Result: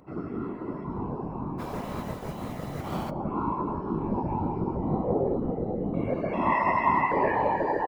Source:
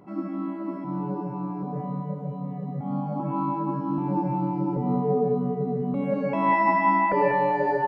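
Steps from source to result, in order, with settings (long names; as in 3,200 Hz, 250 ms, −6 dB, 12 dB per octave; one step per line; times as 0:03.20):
0:01.58–0:03.09: compressing power law on the bin magnitudes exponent 0.5
far-end echo of a speakerphone 100 ms, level −23 dB
random phases in short frames
level −3 dB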